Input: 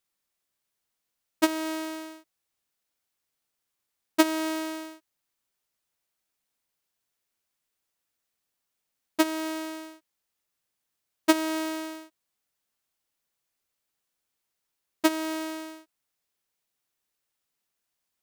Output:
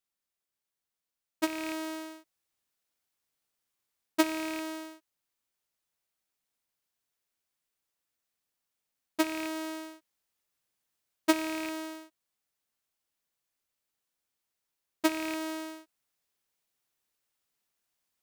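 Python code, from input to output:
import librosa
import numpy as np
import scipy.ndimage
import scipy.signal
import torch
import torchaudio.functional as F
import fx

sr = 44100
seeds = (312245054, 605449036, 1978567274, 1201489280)

y = fx.rattle_buzz(x, sr, strikes_db=-39.0, level_db=-21.0)
y = fx.rider(y, sr, range_db=10, speed_s=0.5)
y = y * 10.0 ** (-5.0 / 20.0)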